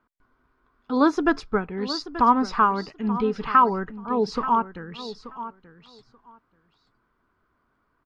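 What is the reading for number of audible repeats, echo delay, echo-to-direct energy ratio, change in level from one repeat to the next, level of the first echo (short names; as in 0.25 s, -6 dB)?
2, 0.882 s, -13.5 dB, -16.5 dB, -13.5 dB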